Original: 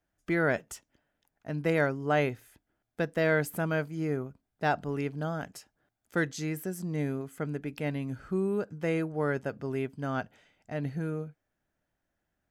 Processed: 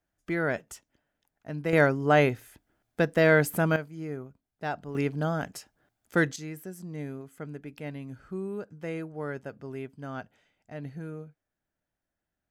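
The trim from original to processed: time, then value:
-1.5 dB
from 1.73 s +5.5 dB
from 3.76 s -5 dB
from 4.95 s +4.5 dB
from 6.36 s -5.5 dB

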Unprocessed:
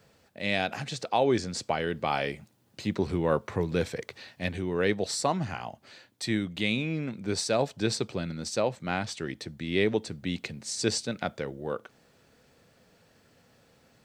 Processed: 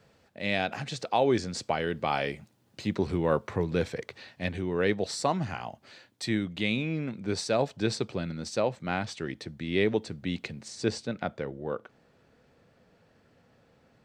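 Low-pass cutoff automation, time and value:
low-pass 6 dB/octave
4.8 kHz
from 0.87 s 8.1 kHz
from 3.53 s 4.9 kHz
from 5.21 s 8 kHz
from 6.29 s 4.6 kHz
from 10.68 s 2 kHz

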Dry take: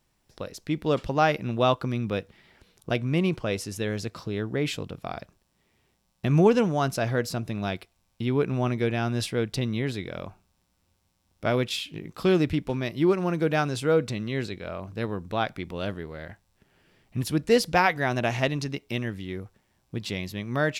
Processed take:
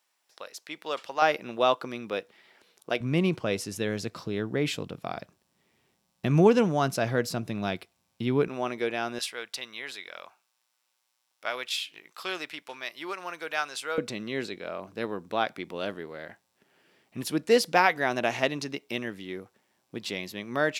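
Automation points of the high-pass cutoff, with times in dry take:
800 Hz
from 1.22 s 380 Hz
from 3.00 s 130 Hz
from 8.48 s 390 Hz
from 9.19 s 1 kHz
from 13.98 s 260 Hz

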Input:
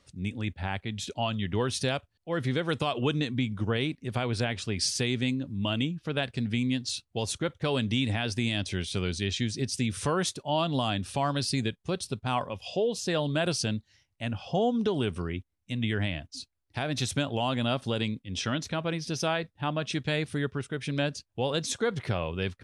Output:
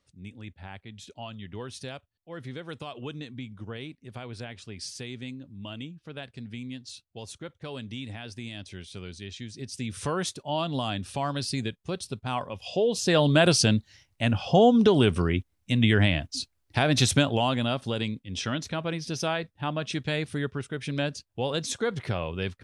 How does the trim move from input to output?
9.46 s -10 dB
10.07 s -1.5 dB
12.45 s -1.5 dB
13.27 s +8 dB
17.11 s +8 dB
17.73 s 0 dB

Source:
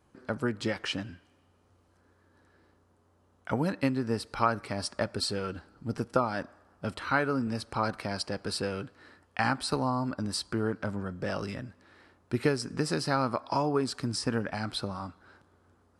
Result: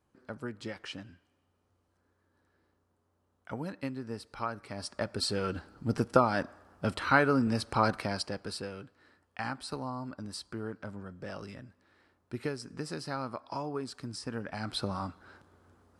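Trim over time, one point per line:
4.55 s -9 dB
5.56 s +3 dB
7.91 s +3 dB
8.74 s -8.5 dB
14.30 s -8.5 dB
14.94 s +2 dB

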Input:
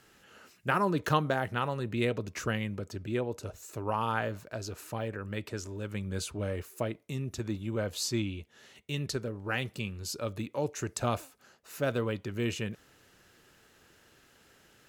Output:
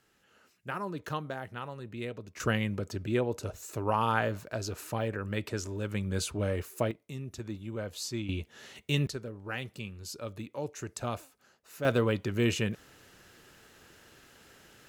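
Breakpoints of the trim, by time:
-8.5 dB
from 2.40 s +3 dB
from 6.91 s -4.5 dB
from 8.29 s +6 dB
from 9.07 s -4.5 dB
from 11.85 s +4.5 dB

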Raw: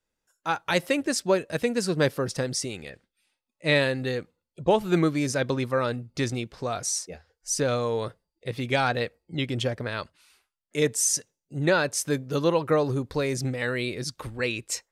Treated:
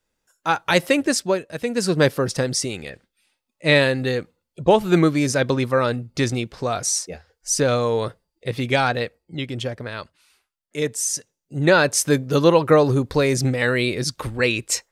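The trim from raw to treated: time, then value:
1.11 s +6.5 dB
1.52 s -3 dB
1.86 s +6 dB
8.62 s +6 dB
9.44 s 0 dB
11.16 s 0 dB
11.83 s +8 dB

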